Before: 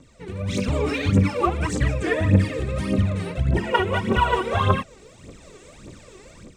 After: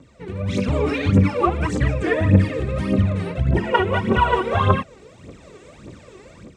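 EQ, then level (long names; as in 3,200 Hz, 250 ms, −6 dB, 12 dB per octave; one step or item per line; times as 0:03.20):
high-pass filter 56 Hz
high-shelf EQ 4,400 Hz −10.5 dB
+3.0 dB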